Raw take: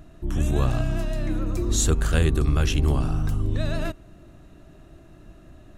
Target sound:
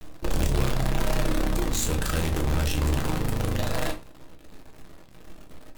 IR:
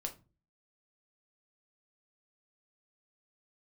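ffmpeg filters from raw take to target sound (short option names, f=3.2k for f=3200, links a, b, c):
-filter_complex "[0:a]asettb=1/sr,asplit=3[a][b][c];[a]atrim=end=0.944[d];[b]atrim=start=0.94:end=3.25,asetpts=PTS-STARTPTS,afade=t=in:d=0.004:c=qsin,afade=t=out:st=2.306:d=0.004:c=qsin,bandreject=f=90.35:t=h:w=4,bandreject=f=180.7:t=h:w=4,bandreject=f=271.05:t=h:w=4,bandreject=f=361.4:t=h:w=4[e];[c]atrim=start=3.246[f];[d][e]acrossfade=d=0.004:c1=hsin:c2=qsin[g];[g][f]acrossfade=d=0.004:c1=qsin:c2=hsin,acompressor=threshold=-25dB:ratio=2.5,acrusher=bits=5:dc=4:mix=0:aa=0.000001[h];[1:a]atrim=start_sample=2205,afade=t=out:st=0.16:d=0.01,atrim=end_sample=7497,asetrate=38367,aresample=44100[i];[h][i]afir=irnorm=-1:irlink=0"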